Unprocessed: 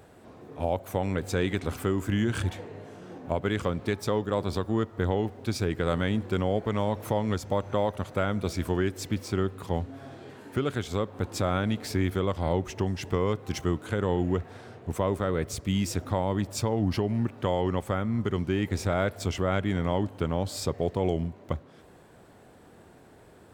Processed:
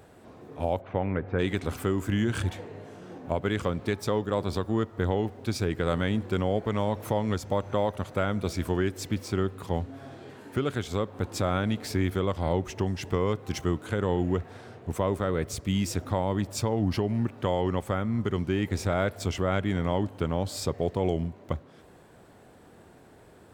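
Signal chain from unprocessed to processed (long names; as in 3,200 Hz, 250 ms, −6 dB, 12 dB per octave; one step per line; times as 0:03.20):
0:00.80–0:01.38: low-pass filter 3,200 Hz → 1,900 Hz 24 dB per octave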